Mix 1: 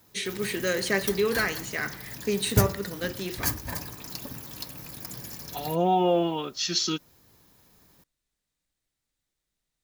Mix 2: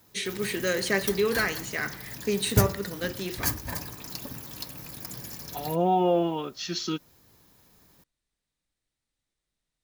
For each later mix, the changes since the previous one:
second voice: add treble shelf 3.5 kHz -11 dB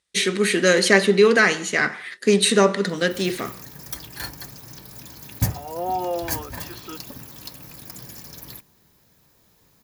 first voice +10.5 dB; second voice: add band-pass 490–2200 Hz; background: entry +2.85 s

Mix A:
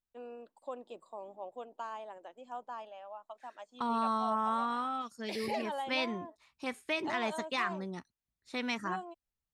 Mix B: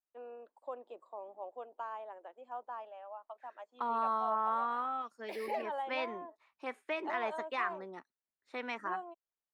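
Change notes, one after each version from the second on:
background: remove low-pass 7.3 kHz 12 dB/octave; master: add three-band isolator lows -24 dB, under 310 Hz, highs -16 dB, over 2.4 kHz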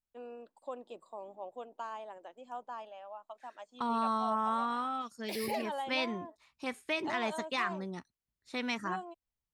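master: remove three-band isolator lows -24 dB, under 310 Hz, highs -16 dB, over 2.4 kHz

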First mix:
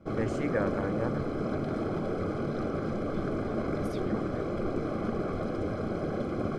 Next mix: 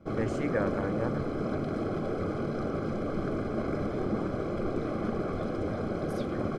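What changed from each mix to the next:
second voice: entry +2.25 s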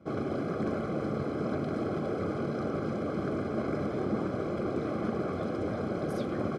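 first voice: muted; master: add high-pass 91 Hz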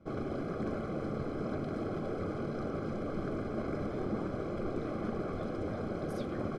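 speech -3.5 dB; background -4.5 dB; master: remove high-pass 91 Hz

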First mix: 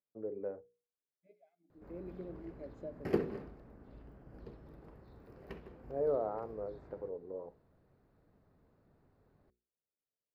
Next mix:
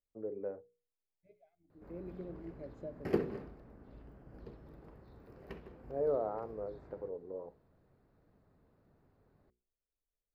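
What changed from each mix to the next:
second voice: remove brick-wall FIR high-pass 160 Hz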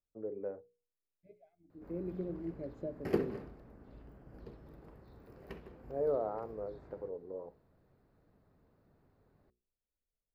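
second voice: add peaking EQ 250 Hz +7.5 dB 2.3 oct; background: add treble shelf 6.8 kHz +5.5 dB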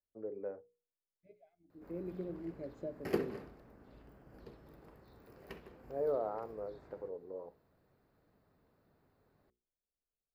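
master: add tilt EQ +1.5 dB/octave

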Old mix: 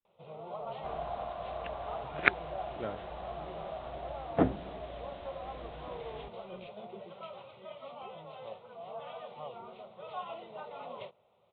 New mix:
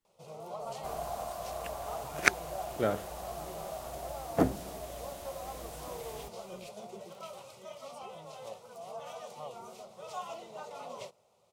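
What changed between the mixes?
speech +9.0 dB; master: remove steep low-pass 3.8 kHz 96 dB/octave

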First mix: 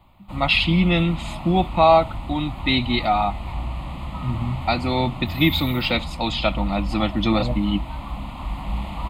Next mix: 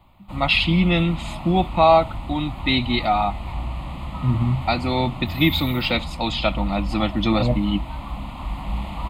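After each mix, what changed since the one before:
second voice +5.5 dB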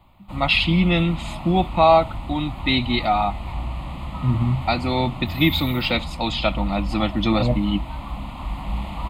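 no change

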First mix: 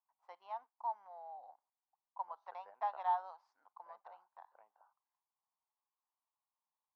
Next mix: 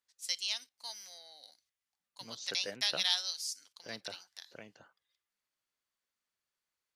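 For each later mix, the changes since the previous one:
first voice: add band-pass filter 7.3 kHz, Q 0.72; master: remove Butterworth band-pass 910 Hz, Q 2.8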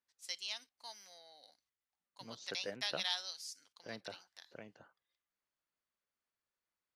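master: add treble shelf 2.7 kHz -10.5 dB

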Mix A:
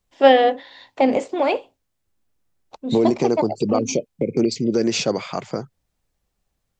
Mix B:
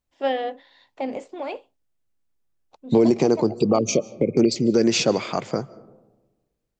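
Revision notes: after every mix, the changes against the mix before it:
first voice -11.5 dB; reverb: on, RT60 1.2 s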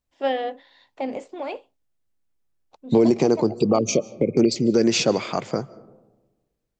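no change

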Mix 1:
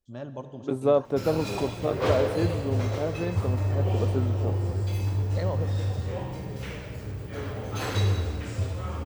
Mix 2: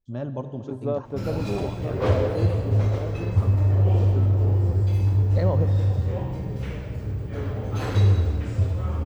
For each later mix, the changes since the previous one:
first voice +3.5 dB; second voice -8.0 dB; master: add tilt EQ -2 dB/octave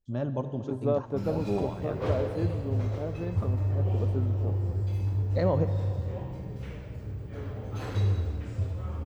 background -8.0 dB

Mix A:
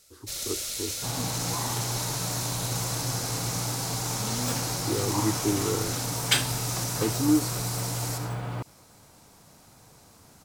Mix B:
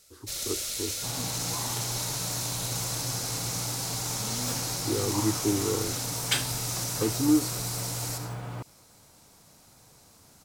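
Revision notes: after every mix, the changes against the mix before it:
second sound -4.0 dB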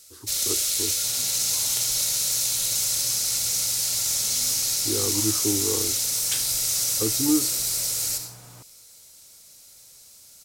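second sound -11.5 dB; master: add treble shelf 2.9 kHz +10.5 dB

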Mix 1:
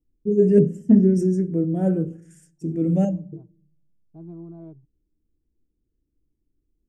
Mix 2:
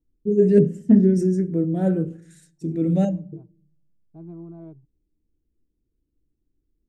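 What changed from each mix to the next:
first voice: remove Butterworth band-stop 4 kHz, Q 2.6; master: add peaking EQ 1.9 kHz +5 dB 1.5 oct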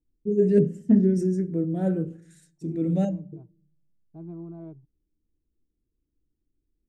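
first voice -4.0 dB

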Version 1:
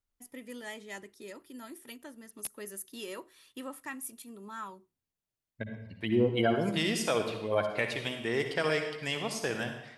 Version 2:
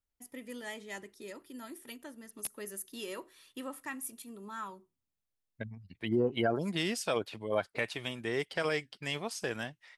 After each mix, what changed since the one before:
reverb: off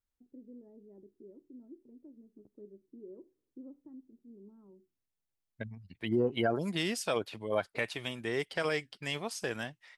first voice: add four-pole ladder low-pass 430 Hz, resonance 40%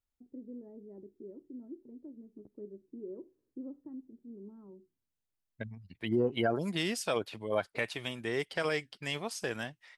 first voice +5.5 dB

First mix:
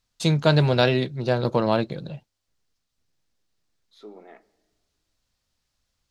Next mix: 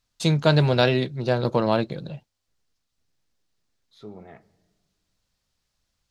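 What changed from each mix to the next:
second voice: remove Chebyshev high-pass 280 Hz, order 3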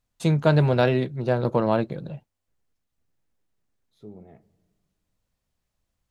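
second voice: add peaking EQ 1.4 kHz -14 dB 1.9 oct; master: add peaking EQ 4.7 kHz -11 dB 1.5 oct

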